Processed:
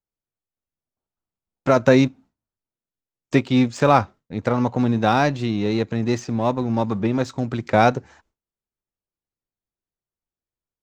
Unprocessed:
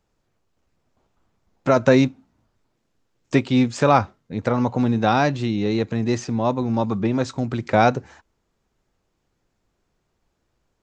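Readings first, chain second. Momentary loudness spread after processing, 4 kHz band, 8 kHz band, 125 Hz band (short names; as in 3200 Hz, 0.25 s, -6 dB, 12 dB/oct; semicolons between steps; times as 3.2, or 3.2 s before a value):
8 LU, +0.5 dB, -1.0 dB, 0.0 dB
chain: gate with hold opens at -45 dBFS; in parallel at -5 dB: crossover distortion -30 dBFS; on the sum: gain -3 dB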